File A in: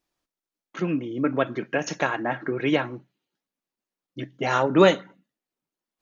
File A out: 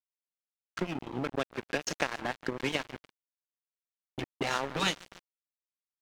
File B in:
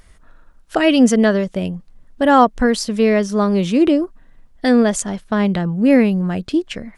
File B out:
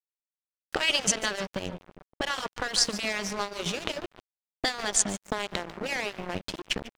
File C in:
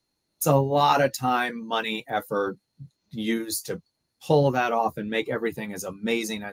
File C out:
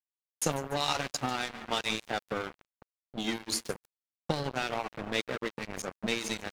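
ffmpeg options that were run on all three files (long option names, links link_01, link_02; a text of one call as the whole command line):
ffmpeg -i in.wav -filter_complex "[0:a]afftfilt=real='re*lt(hypot(re,im),1)':imag='im*lt(hypot(re,im),1)':win_size=1024:overlap=0.75,aecho=1:1:145|290|435|580|725:0.188|0.102|0.0549|0.0297|0.016,agate=range=-33dB:threshold=-40dB:ratio=3:detection=peak,afftdn=noise_reduction=25:noise_floor=-48,acrossover=split=3100[link_01][link_02];[link_01]acompressor=threshold=-31dB:ratio=5[link_03];[link_03][link_02]amix=inputs=2:normalize=0,aeval=exprs='sgn(val(0))*max(abs(val(0))-0.02,0)':channel_layout=same,acrossover=split=8800[link_04][link_05];[link_05]acompressor=threshold=-60dB:ratio=4:attack=1:release=60[link_06];[link_04][link_06]amix=inputs=2:normalize=0,volume=6dB" out.wav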